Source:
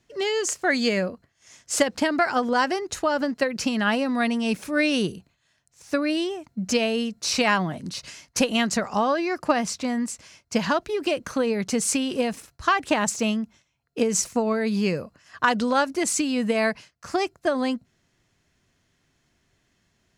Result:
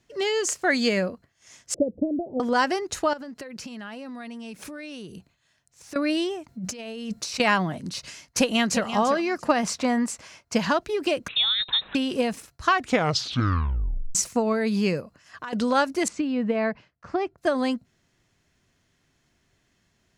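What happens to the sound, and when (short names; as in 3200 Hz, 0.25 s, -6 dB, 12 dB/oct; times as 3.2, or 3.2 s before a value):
1.74–2.4 steep low-pass 580 Hz 48 dB/oct
3.13–5.96 compressor 8:1, threshold -35 dBFS
6.48–7.4 negative-ratio compressor -34 dBFS
8.26–8.87 echo throw 0.34 s, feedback 20%, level -10.5 dB
9.63–10.54 bell 910 Hz +7 dB 2.6 oct
11.28–11.95 inverted band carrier 3900 Hz
12.69 tape stop 1.46 s
15–15.53 compressor 3:1, threshold -37 dBFS
16.08–17.38 tape spacing loss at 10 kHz 32 dB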